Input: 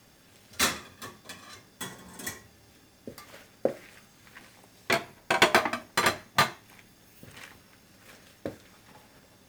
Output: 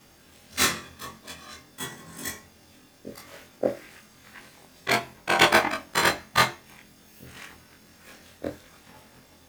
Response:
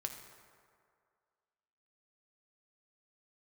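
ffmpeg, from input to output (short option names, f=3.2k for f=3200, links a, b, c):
-af "afftfilt=real='re':imag='-im':win_size=2048:overlap=0.75,volume=7.5dB"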